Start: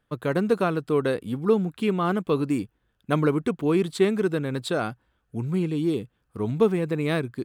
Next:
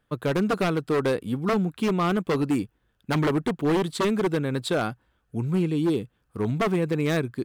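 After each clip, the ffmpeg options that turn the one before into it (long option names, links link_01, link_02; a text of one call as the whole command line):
ffmpeg -i in.wav -af "aeval=exprs='0.119*(abs(mod(val(0)/0.119+3,4)-2)-1)':channel_layout=same,volume=1.5dB" out.wav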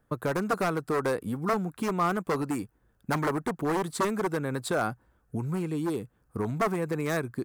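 ffmpeg -i in.wav -filter_complex "[0:a]equalizer=frequency=3200:width_type=o:width=1.3:gain=-13.5,acrossover=split=700|5600[link_01][link_02][link_03];[link_01]acompressor=threshold=-33dB:ratio=6[link_04];[link_04][link_02][link_03]amix=inputs=3:normalize=0,volume=3.5dB" out.wav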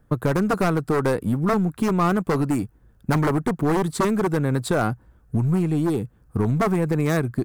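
ffmpeg -i in.wav -filter_complex "[0:a]lowshelf=frequency=250:gain=10.5,asplit=2[link_01][link_02];[link_02]aeval=exprs='clip(val(0),-1,0.0335)':channel_layout=same,volume=-4dB[link_03];[link_01][link_03]amix=inputs=2:normalize=0" out.wav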